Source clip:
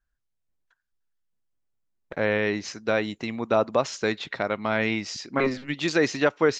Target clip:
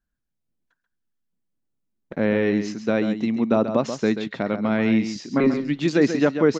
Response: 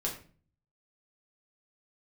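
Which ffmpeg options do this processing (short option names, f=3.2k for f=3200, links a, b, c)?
-filter_complex "[0:a]equalizer=f=220:w=0.79:g=14,asplit=2[a][b];[b]aecho=0:1:135:0.355[c];[a][c]amix=inputs=2:normalize=0,volume=-3.5dB"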